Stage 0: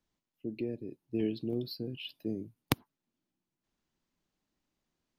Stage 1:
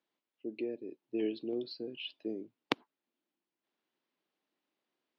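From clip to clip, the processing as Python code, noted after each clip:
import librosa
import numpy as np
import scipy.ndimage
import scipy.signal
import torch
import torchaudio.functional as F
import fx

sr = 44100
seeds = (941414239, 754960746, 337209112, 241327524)

y = scipy.signal.sosfilt(scipy.signal.cheby1(2, 1.0, [360.0, 3500.0], 'bandpass', fs=sr, output='sos'), x)
y = y * 10.0 ** (1.0 / 20.0)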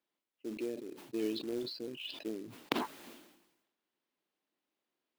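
y = fx.quant_float(x, sr, bits=2)
y = fx.sustainer(y, sr, db_per_s=58.0)
y = y * 10.0 ** (-2.0 / 20.0)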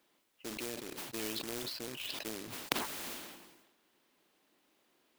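y = fx.spectral_comp(x, sr, ratio=2.0)
y = y * 10.0 ** (4.0 / 20.0)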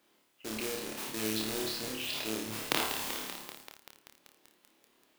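y = fx.room_flutter(x, sr, wall_m=4.7, rt60_s=0.56)
y = fx.echo_crushed(y, sr, ms=193, feedback_pct=80, bits=7, wet_db=-9.0)
y = y * 10.0 ** (1.5 / 20.0)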